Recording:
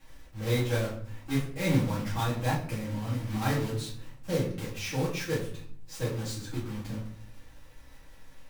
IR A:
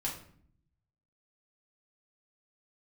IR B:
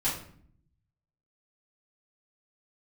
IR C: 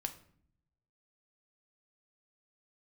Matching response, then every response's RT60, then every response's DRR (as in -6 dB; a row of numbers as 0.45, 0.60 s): B; 0.55, 0.55, 0.60 s; -4.0, -10.0, 6.0 dB